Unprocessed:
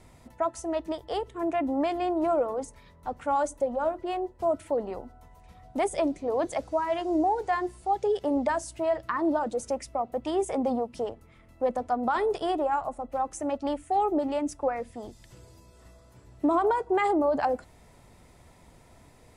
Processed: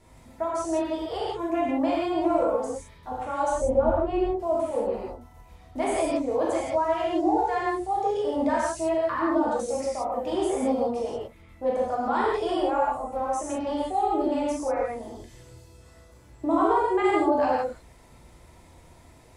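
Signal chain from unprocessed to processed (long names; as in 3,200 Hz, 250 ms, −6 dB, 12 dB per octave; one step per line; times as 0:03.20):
0:03.52–0:04.22: RIAA equalisation playback
reverb whose tail is shaped and stops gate 200 ms flat, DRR −7 dB
level −5 dB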